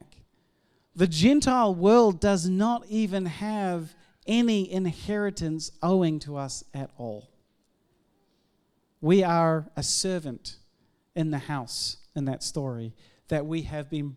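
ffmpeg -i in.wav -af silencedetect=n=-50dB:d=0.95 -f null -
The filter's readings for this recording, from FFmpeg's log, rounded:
silence_start: 7.26
silence_end: 9.02 | silence_duration: 1.76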